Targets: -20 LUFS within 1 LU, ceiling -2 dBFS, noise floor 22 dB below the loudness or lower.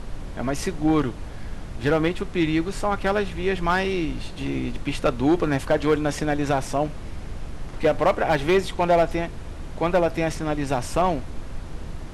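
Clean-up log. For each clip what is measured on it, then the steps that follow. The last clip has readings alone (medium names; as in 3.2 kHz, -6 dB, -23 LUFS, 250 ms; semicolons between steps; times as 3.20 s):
clipped samples 0.5%; clipping level -12.5 dBFS; noise floor -35 dBFS; noise floor target -46 dBFS; loudness -24.0 LUFS; peak level -12.5 dBFS; loudness target -20.0 LUFS
-> clip repair -12.5 dBFS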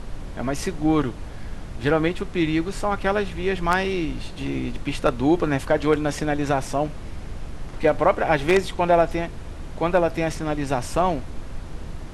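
clipped samples 0.0%; noise floor -35 dBFS; noise floor target -46 dBFS
-> noise print and reduce 11 dB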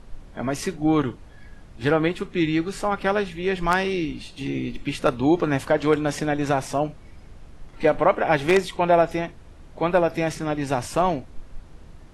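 noise floor -45 dBFS; noise floor target -46 dBFS
-> noise print and reduce 6 dB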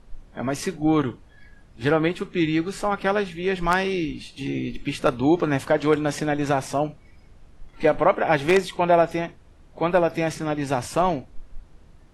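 noise floor -51 dBFS; loudness -23.5 LUFS; peak level -3.5 dBFS; loudness target -20.0 LUFS
-> trim +3.5 dB; peak limiter -2 dBFS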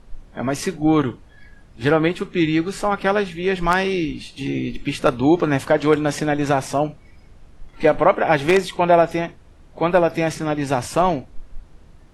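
loudness -20.0 LUFS; peak level -2.0 dBFS; noise floor -47 dBFS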